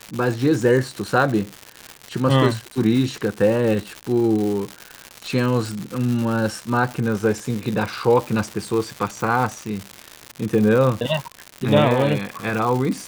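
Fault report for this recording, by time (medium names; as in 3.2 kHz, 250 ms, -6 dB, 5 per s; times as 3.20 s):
crackle 210 per s -24 dBFS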